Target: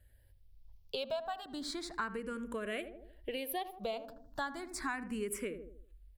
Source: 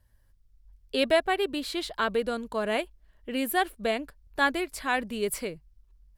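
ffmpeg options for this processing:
-filter_complex "[0:a]asplit=2[s0][s1];[s1]adelay=79,lowpass=f=800:p=1,volume=0.316,asplit=2[s2][s3];[s3]adelay=79,lowpass=f=800:p=1,volume=0.45,asplit=2[s4][s5];[s5]adelay=79,lowpass=f=800:p=1,volume=0.45,asplit=2[s6][s7];[s7]adelay=79,lowpass=f=800:p=1,volume=0.45,asplit=2[s8][s9];[s9]adelay=79,lowpass=f=800:p=1,volume=0.45[s10];[s0][s2][s4][s6][s8][s10]amix=inputs=6:normalize=0,acompressor=threshold=0.0158:ratio=6,asplit=2[s11][s12];[s12]afreqshift=0.34[s13];[s11][s13]amix=inputs=2:normalize=1,volume=1.41"

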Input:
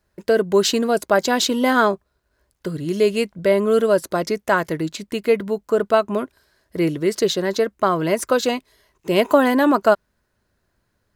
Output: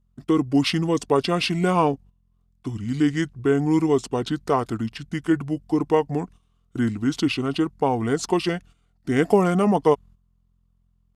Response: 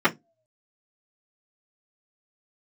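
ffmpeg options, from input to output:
-af "aeval=exprs='val(0)+0.00355*(sin(2*PI*60*n/s)+sin(2*PI*2*60*n/s)/2+sin(2*PI*3*60*n/s)/3+sin(2*PI*4*60*n/s)/4+sin(2*PI*5*60*n/s)/5)':c=same,agate=range=0.282:threshold=0.0112:ratio=16:detection=peak,asetrate=31183,aresample=44100,atempo=1.41421,volume=0.708"

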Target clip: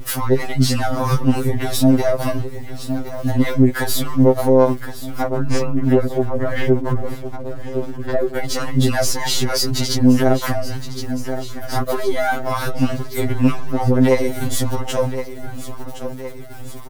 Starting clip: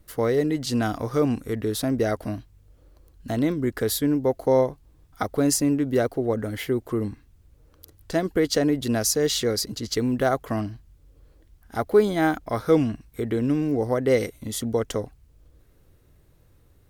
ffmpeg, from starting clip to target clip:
-filter_complex "[0:a]aeval=exprs='if(lt(val(0),0),0.447*val(0),val(0))':c=same,asettb=1/sr,asplit=3[s0][s1][s2];[s0]atrim=end=5.224[s3];[s1]atrim=start=5.22:end=8.36,asetpts=PTS-STARTPTS,afade=t=in:d=0.004:c=qsin,afade=t=out:st=3.136:d=0.004:c=qsin,lowpass=1800[s4];[s2]atrim=start=8.356[s5];[s3][s4]acrossfade=d=0.004:c1=hsin:c2=qsin[s6];[s6][s5]acrossfade=d=0.004:c1=qsin:c2=hsin,acompressor=threshold=0.0447:ratio=5,acrossover=split=580[s7][s8];[s7]aeval=exprs='val(0)*(1-0.7/2+0.7/2*cos(2*PI*3.3*n/s))':c=same[s9];[s8]aeval=exprs='val(0)*(1-0.7/2-0.7/2*cos(2*PI*3.3*n/s))':c=same[s10];[s9][s10]amix=inputs=2:normalize=0,aeval=exprs='val(0)*gte(abs(val(0)),0.00106)':c=same,aecho=1:1:1066|2132|3198|4264|5330:0.1|0.058|0.0336|0.0195|0.0113,alimiter=level_in=50.1:limit=0.891:release=50:level=0:latency=1,afftfilt=real='re*2.45*eq(mod(b,6),0)':imag='im*2.45*eq(mod(b,6),0)':win_size=2048:overlap=0.75,volume=0.473"

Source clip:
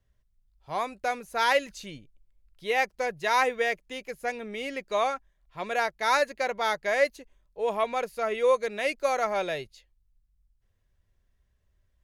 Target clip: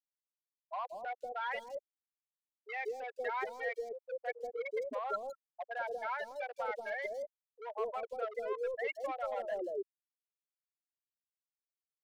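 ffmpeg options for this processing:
-filter_complex "[0:a]afftfilt=real='re*gte(hypot(re,im),0.141)':imag='im*gte(hypot(re,im),0.141)':win_size=1024:overlap=0.75,equalizer=f=62:w=1:g=-9,areverse,acompressor=threshold=0.0178:ratio=5,areverse,alimiter=level_in=3.76:limit=0.0631:level=0:latency=1:release=100,volume=0.266,asoftclip=type=hard:threshold=0.0126,acrossover=split=640|4700[s0][s1][s2];[s2]adelay=160[s3];[s0]adelay=190[s4];[s4][s1][s3]amix=inputs=3:normalize=0,volume=2.51"

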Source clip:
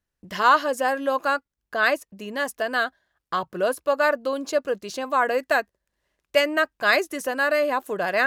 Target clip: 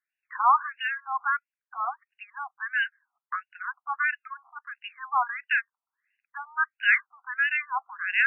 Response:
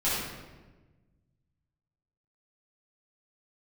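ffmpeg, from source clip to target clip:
-af "lowpass=f=2900:t=q:w=3.6,afftfilt=real='re*between(b*sr/1024,960*pow(2100/960,0.5+0.5*sin(2*PI*1.5*pts/sr))/1.41,960*pow(2100/960,0.5+0.5*sin(2*PI*1.5*pts/sr))*1.41)':imag='im*between(b*sr/1024,960*pow(2100/960,0.5+0.5*sin(2*PI*1.5*pts/sr))/1.41,960*pow(2100/960,0.5+0.5*sin(2*PI*1.5*pts/sr))*1.41)':win_size=1024:overlap=0.75,volume=0.708"

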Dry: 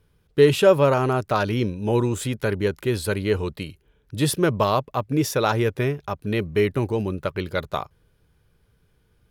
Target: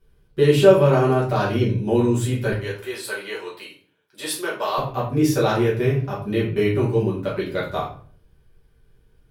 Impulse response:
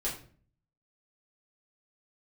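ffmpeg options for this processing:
-filter_complex "[0:a]asettb=1/sr,asplit=3[s0][s1][s2];[s0]atrim=end=2.524[s3];[s1]atrim=start=2.52:end=4.78,asetpts=PTS-STARTPTS,afade=t=in:d=0.004:c=qsin,afade=t=out:st=2.256:d=0.004:c=qsin,highpass=720[s4];[s2]atrim=start=4.776[s5];[s3][s4]acrossfade=d=0.004:c1=hsin:c2=qsin[s6];[s6][s5]acrossfade=d=0.004:c1=qsin:c2=hsin[s7];[1:a]atrim=start_sample=2205,asetrate=41895,aresample=44100[s8];[s7][s8]afir=irnorm=-1:irlink=0,volume=0.631"

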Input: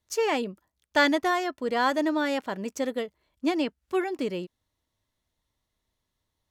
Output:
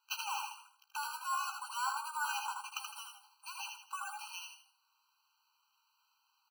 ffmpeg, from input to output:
-filter_complex "[0:a]acompressor=threshold=0.0178:ratio=10,alimiter=level_in=2.24:limit=0.0631:level=0:latency=1:release=406,volume=0.447,asplit=2[s0][s1];[s1]asplit=4[s2][s3][s4][s5];[s2]adelay=81,afreqshift=58,volume=0.501[s6];[s3]adelay=162,afreqshift=116,volume=0.16[s7];[s4]adelay=243,afreqshift=174,volume=0.0513[s8];[s5]adelay=324,afreqshift=232,volume=0.0164[s9];[s6][s7][s8][s9]amix=inputs=4:normalize=0[s10];[s0][s10]amix=inputs=2:normalize=0,acrusher=samples=5:mix=1:aa=0.000001,asplit=2[s11][s12];[s12]aecho=0:1:15|78:0.355|0.398[s13];[s11][s13]amix=inputs=2:normalize=0,afftfilt=real='re*eq(mod(floor(b*sr/1024/790),2),1)':imag='im*eq(mod(floor(b*sr/1024/790),2),1)':win_size=1024:overlap=0.75,volume=2.66"

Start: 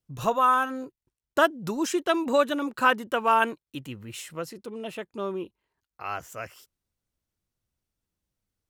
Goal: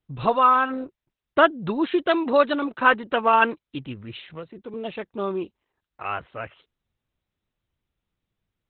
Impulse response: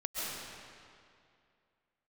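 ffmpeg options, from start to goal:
-filter_complex "[0:a]asettb=1/sr,asplit=3[s0][s1][s2];[s0]atrim=end=0.684[s3];[s1]atrim=start=0.68:end=1.44,asetpts=PTS-STARTPTS,afade=t=in:d=0.004:c=qsin,afade=t=out:st=0.756:d=0.004:c=qsin,lowpass=5300[s4];[s2]atrim=start=1.436[s5];[s3][s4]acrossfade=d=0.004:c1=hsin:c2=qsin[s6];[s6][s5]acrossfade=d=0.004:c1=qsin:c2=hsin,asplit=3[s7][s8][s9];[s7]afade=t=out:st=2.09:d=0.02[s10];[s8]lowshelf=f=110:g=-11.5,afade=t=in:st=2.09:d=0.02,afade=t=out:st=3.11:d=0.02[s11];[s9]afade=t=in:st=3.11:d=0.02[s12];[s10][s11][s12]amix=inputs=3:normalize=0,asettb=1/sr,asplit=3[s13][s14][s15];[s13]atrim=end=4.294[s16];[s14]atrim=start=4.29:end=4.74,asetpts=PTS-STARTPTS,afade=t=in:d=0.004:c=qsin,afade=t=out:st=0.446:d=0.004:c=qsin,acrossover=split=370|770|2900[s17][s18][s19][s20];[s17]acompressor=threshold=0.00708:ratio=4[s21];[s18]acompressor=threshold=0.00562:ratio=4[s22];[s19]acompressor=threshold=0.00355:ratio=4[s23];[s20]acompressor=threshold=0.00178:ratio=4[s24];[s21][s22][s23][s24]amix=inputs=4:normalize=0[s25];[s15]atrim=start=4.736[s26];[s16][s25]acrossfade=d=0.004:c1=hsin:c2=qsin[s27];[s27][s26]acrossfade=d=0.004:c1=qsin:c2=hsin,volume=1.68" -ar 48000 -c:a libopus -b:a 8k

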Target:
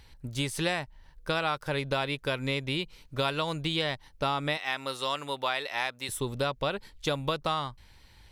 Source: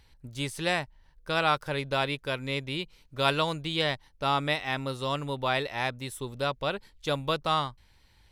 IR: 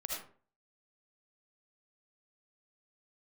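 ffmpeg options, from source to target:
-filter_complex "[0:a]asettb=1/sr,asplit=3[s0][s1][s2];[s0]atrim=end=4.574[s3];[s1]atrim=start=4.57:end=6.09,asetpts=PTS-STARTPTS,afade=t=in:d=0.004:c=qsin,afade=t=out:st=1.516:d=0.004:c=qsin,highpass=f=920:p=1[s4];[s2]atrim=start=6.086[s5];[s3][s4]acrossfade=d=0.004:c1=hsin:c2=qsin[s6];[s6][s5]acrossfade=d=0.004:c1=qsin:c2=hsin,acompressor=threshold=0.0282:ratio=6,volume=1.88"

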